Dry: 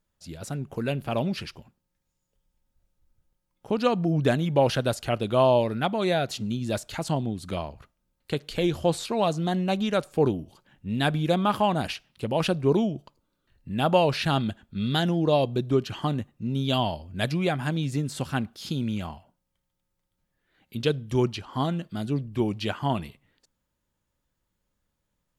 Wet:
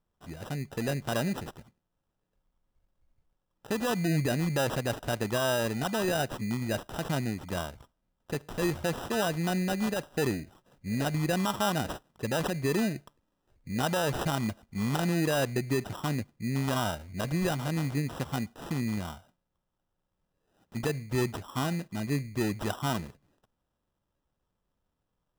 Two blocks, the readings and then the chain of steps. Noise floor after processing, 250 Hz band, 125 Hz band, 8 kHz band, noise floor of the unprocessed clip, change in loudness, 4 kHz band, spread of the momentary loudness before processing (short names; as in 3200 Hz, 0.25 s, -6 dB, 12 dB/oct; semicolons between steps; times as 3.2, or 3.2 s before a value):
-82 dBFS, -4.0 dB, -3.5 dB, +3.5 dB, -79 dBFS, -4.5 dB, -5.0 dB, 11 LU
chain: limiter -17 dBFS, peak gain reduction 9.5 dB; sample-and-hold 20×; gain -2.5 dB